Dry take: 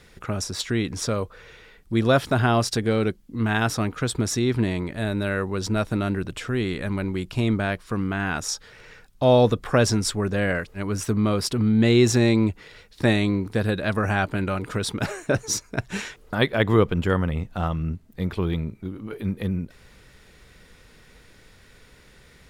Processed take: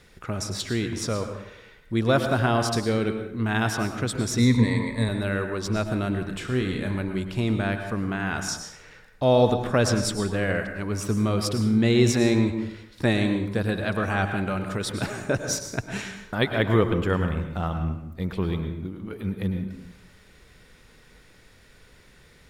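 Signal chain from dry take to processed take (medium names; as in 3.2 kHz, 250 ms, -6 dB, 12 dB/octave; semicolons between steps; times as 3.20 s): 4.38–5.09 s: rippled EQ curve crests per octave 0.98, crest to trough 18 dB; 6.28–6.95 s: flutter echo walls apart 5.4 m, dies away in 0.25 s; plate-style reverb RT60 0.81 s, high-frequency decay 0.65×, pre-delay 90 ms, DRR 6.5 dB; trim -2.5 dB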